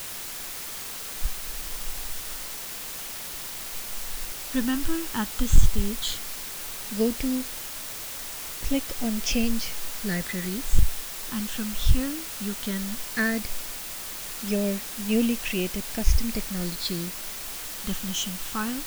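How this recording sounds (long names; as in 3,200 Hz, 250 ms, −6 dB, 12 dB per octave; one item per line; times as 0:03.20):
phaser sweep stages 8, 0.15 Hz, lowest notch 640–1,400 Hz
a quantiser's noise floor 6 bits, dither triangular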